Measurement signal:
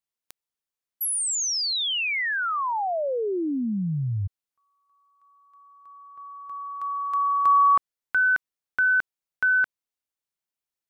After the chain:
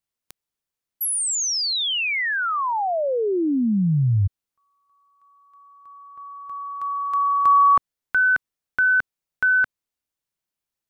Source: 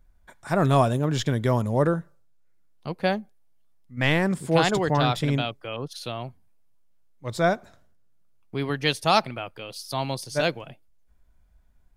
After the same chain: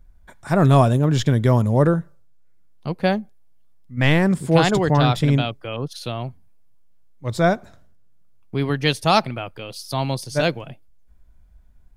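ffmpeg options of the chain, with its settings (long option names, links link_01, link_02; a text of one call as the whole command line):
ffmpeg -i in.wav -af "lowshelf=frequency=260:gain=6.5,volume=2.5dB" out.wav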